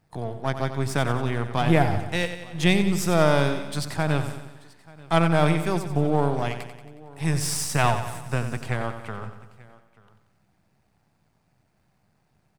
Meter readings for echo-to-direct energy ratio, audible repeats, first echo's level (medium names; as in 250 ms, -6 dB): -8.0 dB, 8, -10.0 dB